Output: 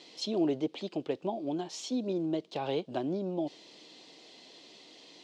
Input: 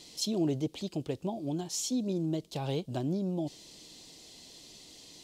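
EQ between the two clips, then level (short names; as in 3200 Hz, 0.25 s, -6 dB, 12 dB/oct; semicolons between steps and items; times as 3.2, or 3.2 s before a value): BPF 310–3200 Hz; +4.0 dB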